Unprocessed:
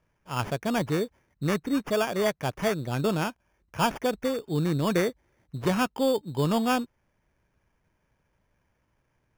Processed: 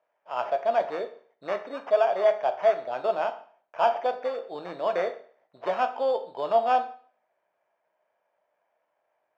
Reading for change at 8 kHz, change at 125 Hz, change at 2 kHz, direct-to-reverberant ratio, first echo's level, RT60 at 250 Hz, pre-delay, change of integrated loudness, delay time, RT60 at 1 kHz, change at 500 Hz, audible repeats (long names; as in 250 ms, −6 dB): below −20 dB, below −25 dB, −3.5 dB, 7.0 dB, no echo audible, 0.50 s, 10 ms, +1.0 dB, no echo audible, 0.50 s, +3.5 dB, no echo audible